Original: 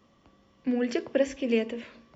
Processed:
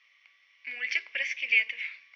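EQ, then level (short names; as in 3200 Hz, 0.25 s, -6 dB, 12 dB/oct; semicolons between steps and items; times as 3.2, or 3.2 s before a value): resonant high-pass 2200 Hz, resonance Q 10; elliptic low-pass 5900 Hz, stop band 40 dB; 0.0 dB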